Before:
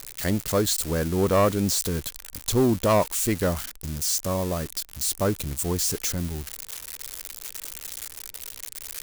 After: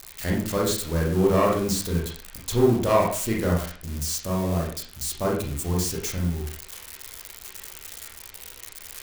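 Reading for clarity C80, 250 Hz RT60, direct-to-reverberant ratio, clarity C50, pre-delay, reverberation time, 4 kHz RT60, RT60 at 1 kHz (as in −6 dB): 8.0 dB, 0.45 s, −2.5 dB, 5.0 dB, 29 ms, 0.45 s, 0.40 s, 0.45 s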